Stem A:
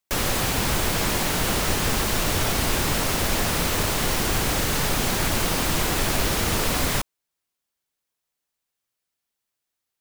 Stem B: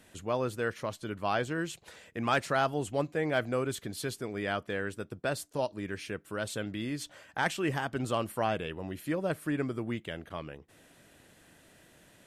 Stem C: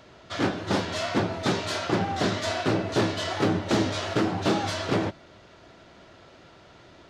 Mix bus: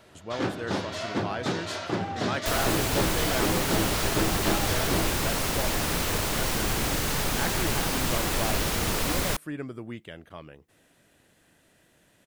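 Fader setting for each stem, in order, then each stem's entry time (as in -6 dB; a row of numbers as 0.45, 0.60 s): -4.0, -3.5, -4.0 dB; 2.35, 0.00, 0.00 s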